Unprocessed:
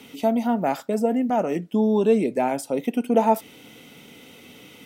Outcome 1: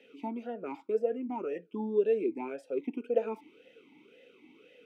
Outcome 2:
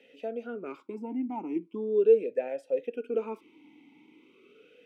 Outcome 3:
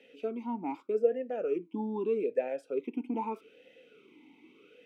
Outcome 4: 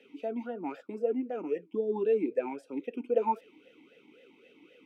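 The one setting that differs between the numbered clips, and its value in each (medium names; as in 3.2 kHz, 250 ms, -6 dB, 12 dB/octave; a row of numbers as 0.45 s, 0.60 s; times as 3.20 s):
talking filter, rate: 1.9 Hz, 0.39 Hz, 0.81 Hz, 3.8 Hz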